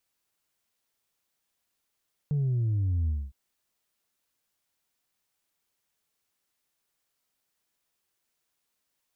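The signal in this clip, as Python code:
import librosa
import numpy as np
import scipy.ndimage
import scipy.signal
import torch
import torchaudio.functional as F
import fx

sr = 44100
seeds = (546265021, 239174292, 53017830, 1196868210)

y = fx.sub_drop(sr, level_db=-24.0, start_hz=150.0, length_s=1.01, drive_db=1.5, fade_s=0.24, end_hz=65.0)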